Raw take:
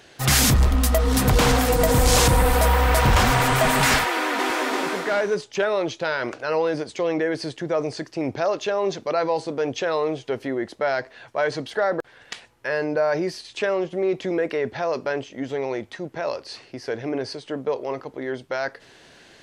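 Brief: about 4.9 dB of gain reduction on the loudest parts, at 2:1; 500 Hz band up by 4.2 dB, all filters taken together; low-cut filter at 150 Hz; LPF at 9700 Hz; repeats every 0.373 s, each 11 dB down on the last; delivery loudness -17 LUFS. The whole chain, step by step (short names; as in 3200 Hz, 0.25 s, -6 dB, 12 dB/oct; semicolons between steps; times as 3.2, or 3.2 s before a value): HPF 150 Hz; LPF 9700 Hz; bell 500 Hz +5 dB; compressor 2:1, threshold -22 dBFS; feedback echo 0.373 s, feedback 28%, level -11 dB; gain +7.5 dB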